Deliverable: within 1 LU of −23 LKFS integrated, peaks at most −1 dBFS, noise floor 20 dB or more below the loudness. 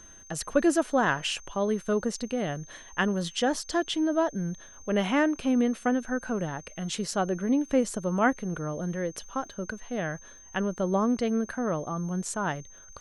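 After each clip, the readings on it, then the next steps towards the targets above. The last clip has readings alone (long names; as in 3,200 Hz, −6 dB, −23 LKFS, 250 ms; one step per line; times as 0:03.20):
crackle rate 40 per second; interfering tone 6,300 Hz; level of the tone −49 dBFS; integrated loudness −28.5 LKFS; sample peak −10.0 dBFS; target loudness −23.0 LKFS
→ click removal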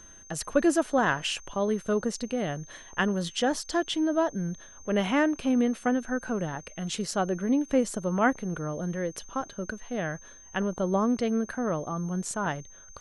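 crackle rate 0.15 per second; interfering tone 6,300 Hz; level of the tone −49 dBFS
→ notch filter 6,300 Hz, Q 30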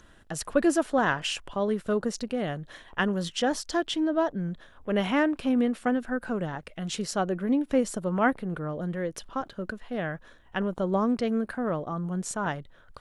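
interfering tone none found; integrated loudness −28.5 LKFS; sample peak −10.5 dBFS; target loudness −23.0 LKFS
→ level +5.5 dB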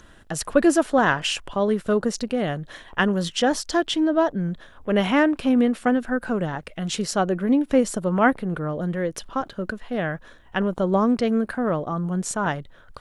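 integrated loudness −23.0 LKFS; sample peak −5.0 dBFS; background noise floor −50 dBFS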